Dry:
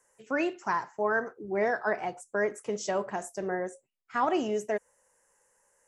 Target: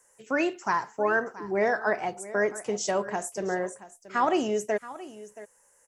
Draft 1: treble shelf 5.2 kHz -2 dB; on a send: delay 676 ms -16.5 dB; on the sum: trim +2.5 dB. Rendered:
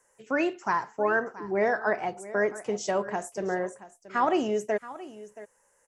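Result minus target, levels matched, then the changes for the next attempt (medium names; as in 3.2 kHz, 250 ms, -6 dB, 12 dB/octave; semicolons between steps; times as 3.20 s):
8 kHz band -5.0 dB
change: treble shelf 5.2 kHz +6.5 dB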